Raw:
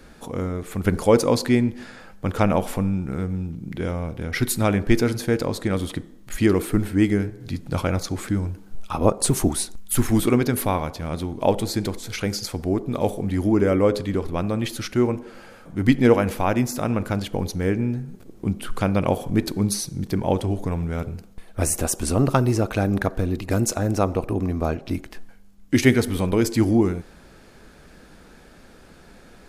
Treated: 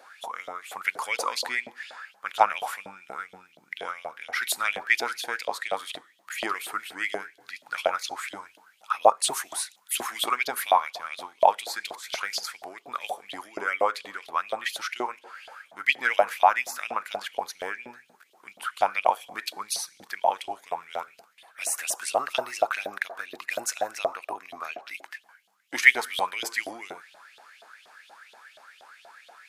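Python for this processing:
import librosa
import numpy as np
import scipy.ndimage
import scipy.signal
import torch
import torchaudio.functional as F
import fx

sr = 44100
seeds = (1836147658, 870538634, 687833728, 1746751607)

y = fx.filter_lfo_highpass(x, sr, shape='saw_up', hz=4.2, low_hz=630.0, high_hz=3600.0, q=7.3)
y = y * 10.0 ** (-4.5 / 20.0)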